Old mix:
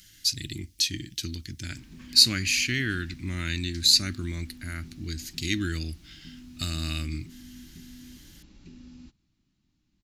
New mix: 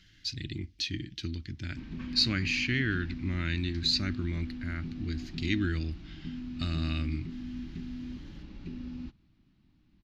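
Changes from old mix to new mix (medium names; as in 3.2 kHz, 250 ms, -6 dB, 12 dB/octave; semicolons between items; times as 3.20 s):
background +8.0 dB; master: add distance through air 240 m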